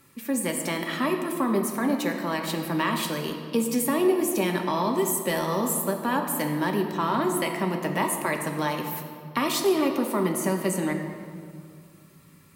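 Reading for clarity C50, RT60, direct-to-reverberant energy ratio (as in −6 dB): 5.5 dB, 2.1 s, 2.0 dB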